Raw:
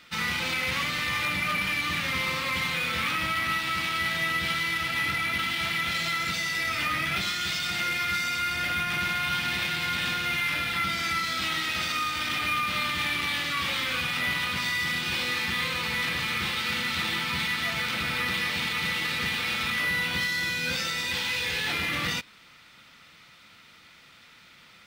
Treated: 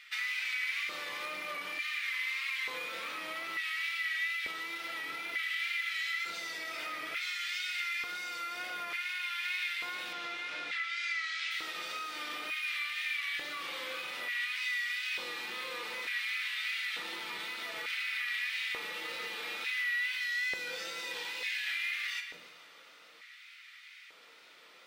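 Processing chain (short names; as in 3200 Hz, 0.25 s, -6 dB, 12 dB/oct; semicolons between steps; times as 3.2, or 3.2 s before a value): shoebox room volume 130 m³, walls mixed, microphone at 0.5 m; compressor 6:1, threshold -32 dBFS, peak gain reduction 9.5 dB; 10.13–11.51 LPF 7400 Hz 24 dB/oct; thinning echo 0.149 s, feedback 73%, high-pass 420 Hz, level -14.5 dB; LFO high-pass square 0.56 Hz 440–2000 Hz; wow and flutter 38 cents; gain -5.5 dB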